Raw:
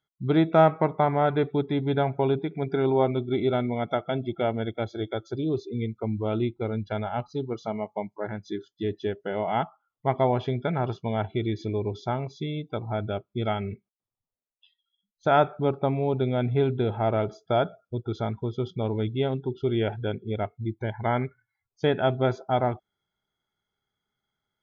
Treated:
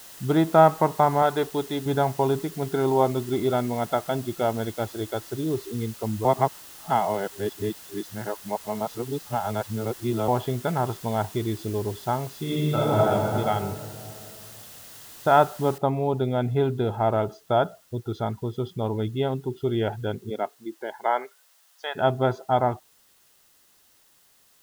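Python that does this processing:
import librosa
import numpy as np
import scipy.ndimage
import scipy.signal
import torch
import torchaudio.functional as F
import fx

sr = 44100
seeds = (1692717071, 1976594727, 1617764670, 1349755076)

y = fx.bass_treble(x, sr, bass_db=-8, treble_db=14, at=(1.22, 1.86))
y = fx.reverb_throw(y, sr, start_s=12.41, length_s=0.64, rt60_s=2.9, drr_db=-8.5)
y = fx.noise_floor_step(y, sr, seeds[0], at_s=15.78, before_db=-45, after_db=-60, tilt_db=0.0)
y = fx.highpass(y, sr, hz=fx.line((20.29, 210.0), (21.95, 740.0)), slope=24, at=(20.29, 21.95), fade=0.02)
y = fx.edit(y, sr, fx.reverse_span(start_s=6.25, length_s=4.03), tone=tone)
y = fx.notch(y, sr, hz=2300.0, q=9.1)
y = fx.dynamic_eq(y, sr, hz=960.0, q=1.7, threshold_db=-39.0, ratio=4.0, max_db=6)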